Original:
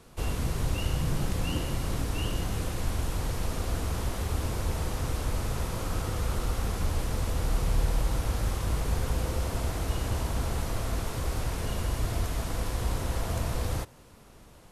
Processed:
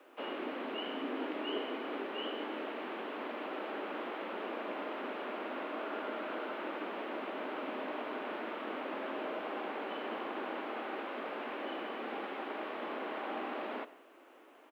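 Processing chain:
high-shelf EQ 2,300 Hz +2.5 dB
single-sideband voice off tune +120 Hz 170–2,900 Hz
on a send: single-tap delay 83 ms −21 dB
on the sum: comb and all-pass reverb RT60 0.43 s, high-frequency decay 0.5×, pre-delay 80 ms, DRR 18.5 dB
bit-depth reduction 12 bits, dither none
level −2.5 dB

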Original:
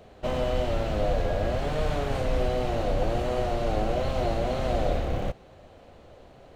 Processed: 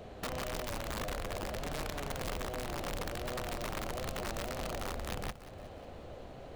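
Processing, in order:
low-shelf EQ 470 Hz +2 dB
downward compressor 8 to 1, threshold −37 dBFS, peak gain reduction 17.5 dB
wrap-around overflow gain 32.5 dB
feedback echo at a low word length 181 ms, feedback 55%, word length 11 bits, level −14.5 dB
level +1.5 dB

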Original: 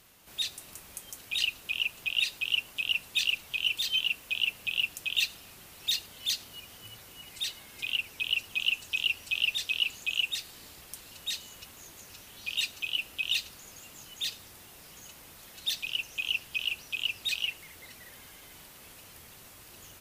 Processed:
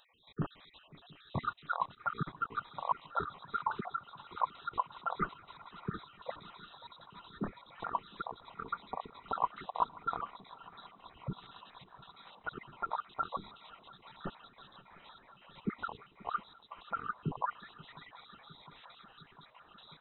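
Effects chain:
time-frequency cells dropped at random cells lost 60%
voice inversion scrambler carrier 3,900 Hz
feedback echo with a long and a short gap by turns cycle 708 ms, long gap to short 3 to 1, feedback 79%, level −22 dB
level −2 dB

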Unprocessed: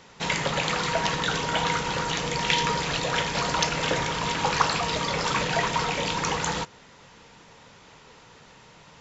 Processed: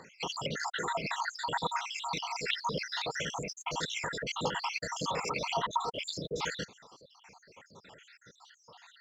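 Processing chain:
time-frequency cells dropped at random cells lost 73%
high-pass filter 220 Hz 6 dB per octave
downward compressor 2 to 1, threshold −34 dBFS, peak gain reduction 7.5 dB
phase shifter 1.8 Hz, delay 2.8 ms, feedback 40%

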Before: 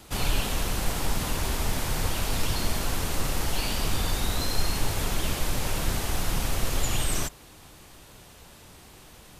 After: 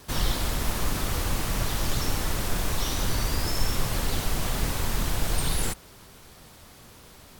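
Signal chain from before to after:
speed change +27%

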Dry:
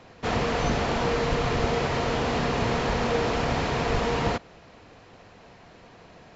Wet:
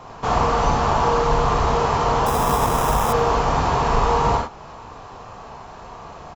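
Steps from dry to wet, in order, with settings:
reverb whose tail is shaped and stops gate 120 ms flat, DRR −1.5 dB
in parallel at +3 dB: downward compressor, threshold −34 dBFS, peak gain reduction 16.5 dB
0:02.26–0:03.13: on the sum: sample-rate reduction 4,400 Hz, jitter 0%
graphic EQ with 10 bands 250 Hz −6 dB, 500 Hz −4 dB, 1,000 Hz +9 dB, 2,000 Hz −10 dB, 4,000 Hz −5 dB
repeating echo 88 ms, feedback 58%, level −24 dB
level +1.5 dB

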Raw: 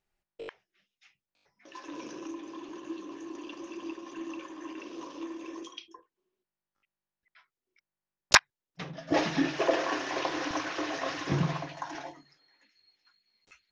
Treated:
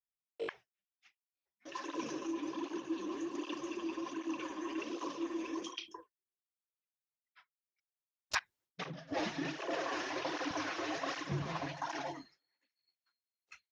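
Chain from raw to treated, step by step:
downward expander −52 dBFS
reversed playback
downward compressor 4 to 1, threshold −41 dBFS, peak gain reduction 23.5 dB
reversed playback
through-zero flanger with one copy inverted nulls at 1.3 Hz, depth 7.9 ms
level +7.5 dB

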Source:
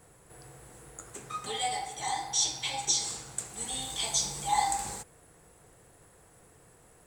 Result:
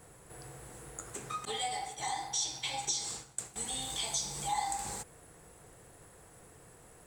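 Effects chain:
0:01.45–0:03.56: downward expander −36 dBFS
downward compressor 2 to 1, threshold −39 dBFS, peak gain reduction 10 dB
level +2 dB

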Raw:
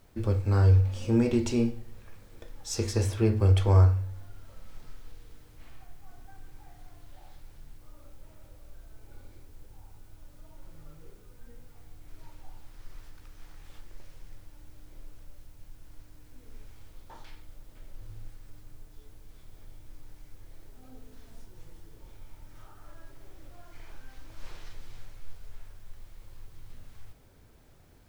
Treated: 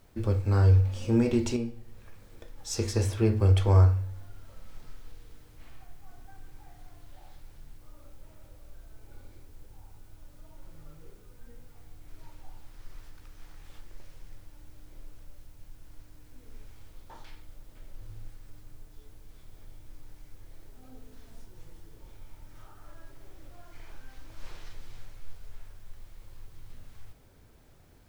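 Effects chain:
0:01.56–0:02.58: downward compressor 1.5 to 1, threshold −42 dBFS, peak gain reduction 7.5 dB

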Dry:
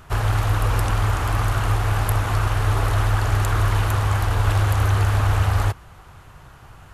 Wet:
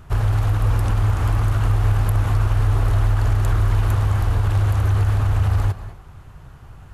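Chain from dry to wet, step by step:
low-shelf EQ 360 Hz +10 dB
brickwall limiter −5.5 dBFS, peak gain reduction 6 dB
on a send: convolution reverb RT60 0.40 s, pre-delay 184 ms, DRR 12 dB
on the sum: level −5 dB

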